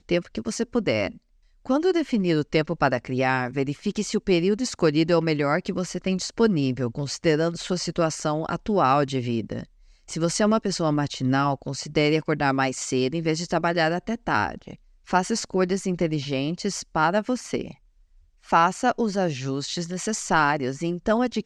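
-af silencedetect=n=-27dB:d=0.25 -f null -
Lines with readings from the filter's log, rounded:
silence_start: 1.07
silence_end: 1.69 | silence_duration: 0.62
silence_start: 9.63
silence_end: 10.10 | silence_duration: 0.48
silence_start: 14.73
silence_end: 15.11 | silence_duration: 0.38
silence_start: 17.71
silence_end: 18.52 | silence_duration: 0.82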